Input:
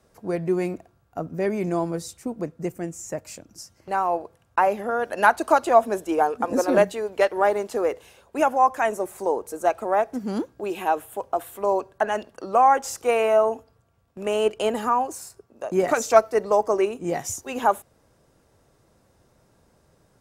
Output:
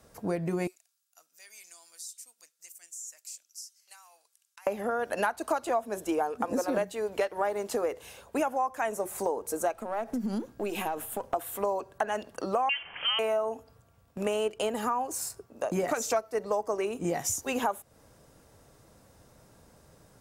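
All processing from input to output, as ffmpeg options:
-filter_complex "[0:a]asettb=1/sr,asplit=3[s0][s1][s2];[s0]atrim=end=0.674[s3];[s1]atrim=start=0.67:end=4.67,asetpts=PTS-STARTPTS,afade=t=in:d=0.004:c=qsin,afade=t=out:st=3.996:d=0.004:c=qsin,aderivative,acompressor=threshold=0.00708:ratio=4:attack=3.2:release=140:knee=1:detection=peak,bandpass=f=5500:t=q:w=0.76[s4];[s2]atrim=start=4.666[s5];[s3][s4]acrossfade=d=0.004:c1=hsin:c2=qsin[s6];[s6][s5]acrossfade=d=0.004:c1=qsin:c2=hsin,asettb=1/sr,asplit=3[s7][s8][s9];[s7]atrim=end=9.734[s10];[s8]atrim=start=9.73:end=11.34,asetpts=PTS-STARTPTS,afade=t=in:d=0.004:c=qsin,afade=t=out:st=1.606:d=0.004:c=qsin,aeval=exprs='if(lt(val(0),0),0.708*val(0),val(0))':c=same,equalizer=f=230:t=o:w=0.24:g=9.5,acompressor=threshold=0.0355:ratio=6:attack=3.2:release=140:knee=1:detection=peak[s11];[s9]atrim=start=11.336[s12];[s10][s11]acrossfade=d=0.004:c1=hsin:c2=qsin[s13];[s13][s12]acrossfade=d=0.004:c1=qsin:c2=hsin,asettb=1/sr,asplit=3[s14][s15][s16];[s14]atrim=end=12.694[s17];[s15]atrim=start=12.69:end=13.19,asetpts=PTS-STARTPTS,afade=t=in:d=0.004:c=qsin,afade=t=out:st=0.496:d=0.004:c=qsin,aeval=exprs='val(0)+0.5*0.0335*sgn(val(0))':c=same,highpass=600,lowpass=f=3100:t=q:w=0.5098,lowpass=f=3100:t=q:w=0.6013,lowpass=f=3100:t=q:w=0.9,lowpass=f=3100:t=q:w=2.563,afreqshift=-3600[s18];[s16]atrim=start=13.186[s19];[s17][s18]acrossfade=d=0.004:c1=hsin:c2=qsin[s20];[s20][s19]acrossfade=d=0.004:c1=qsin:c2=hsin,highshelf=f=7200:g=5.5,bandreject=f=370:w=12,acompressor=threshold=0.0316:ratio=5,volume=1.41"

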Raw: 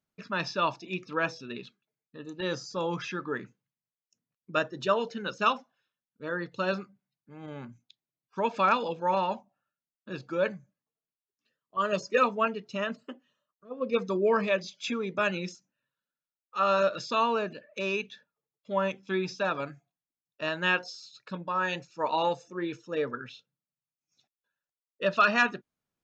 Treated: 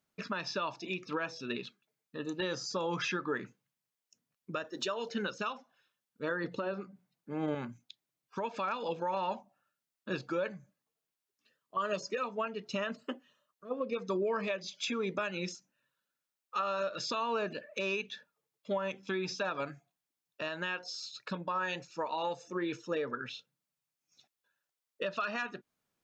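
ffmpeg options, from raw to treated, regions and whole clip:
-filter_complex "[0:a]asettb=1/sr,asplit=3[s0][s1][s2];[s0]atrim=end=4.644[s3];[s1]atrim=start=4.64:end=5.09,asetpts=PTS-STARTPTS,afade=t=in:d=0.004:c=qsin,afade=t=out:st=0.446:d=0.004:c=qsin,highpass=f=200:w=0.5412,highpass=f=200:w=1.3066,highshelf=f=5700:g=10.5[s4];[s2]atrim=start=5.086[s5];[s3][s4]acrossfade=d=0.004:c1=hsin:c2=qsin[s6];[s6][s5]acrossfade=d=0.004:c1=qsin:c2=hsin,asettb=1/sr,asplit=3[s7][s8][s9];[s7]atrim=end=6.444[s10];[s8]atrim=start=6.44:end=7.55,asetpts=PTS-STARTPTS,afade=t=in:d=0.004:c=qsin,afade=t=out:st=1.106:d=0.004:c=qsin,acrossover=split=3500[s11][s12];[s12]acompressor=threshold=0.001:ratio=4:attack=1:release=60[s13];[s11][s13]amix=inputs=2:normalize=0,equalizer=f=360:t=o:w=2.8:g=8,bandreject=f=60:t=h:w=6,bandreject=f=120:t=h:w=6,bandreject=f=180:t=h:w=6,bandreject=f=240:t=h:w=6[s14];[s9]atrim=start=7.546[s15];[s10][s14]acrossfade=d=0.004:c1=hsin:c2=qsin[s16];[s16][s15]acrossfade=d=0.004:c1=qsin:c2=hsin,lowshelf=f=190:g=-6.5,acompressor=threshold=0.0251:ratio=6,alimiter=level_in=1.88:limit=0.0631:level=0:latency=1:release=303,volume=0.531,volume=1.88"

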